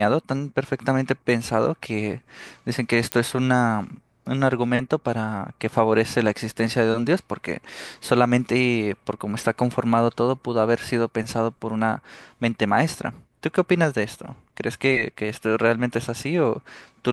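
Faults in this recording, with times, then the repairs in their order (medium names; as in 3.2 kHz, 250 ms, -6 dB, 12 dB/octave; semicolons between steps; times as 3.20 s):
3.12 s: pop -6 dBFS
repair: de-click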